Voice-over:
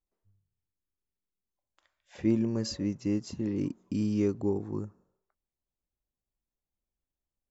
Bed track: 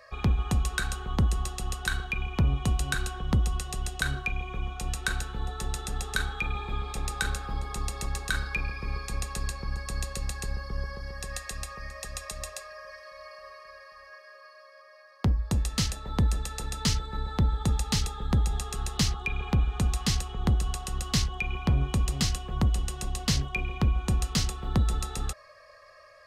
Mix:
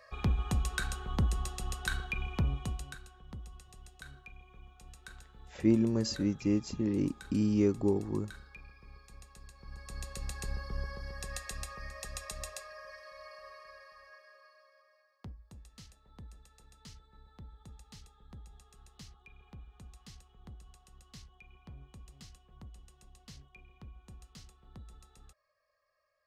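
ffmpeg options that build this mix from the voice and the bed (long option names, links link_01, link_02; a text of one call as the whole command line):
ffmpeg -i stem1.wav -i stem2.wav -filter_complex "[0:a]adelay=3400,volume=0.5dB[link_01];[1:a]volume=11.5dB,afade=type=out:start_time=2.31:duration=0.69:silence=0.158489,afade=type=in:start_time=9.53:duration=1:silence=0.149624,afade=type=out:start_time=13.62:duration=1.75:silence=0.0841395[link_02];[link_01][link_02]amix=inputs=2:normalize=0" out.wav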